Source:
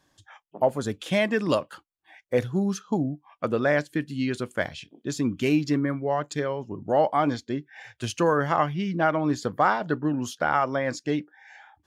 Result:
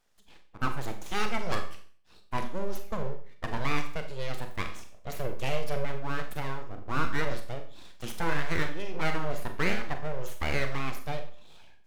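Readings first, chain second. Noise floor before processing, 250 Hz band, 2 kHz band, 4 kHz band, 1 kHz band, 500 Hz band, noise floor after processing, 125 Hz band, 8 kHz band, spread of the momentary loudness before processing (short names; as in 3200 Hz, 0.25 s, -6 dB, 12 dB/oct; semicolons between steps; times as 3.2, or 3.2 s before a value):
-73 dBFS, -12.5 dB, -3.5 dB, -2.5 dB, -8.5 dB, -10.5 dB, -55 dBFS, -5.0 dB, -6.0 dB, 9 LU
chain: full-wave rectifier; Schroeder reverb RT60 0.46 s, combs from 30 ms, DRR 6 dB; gain -5 dB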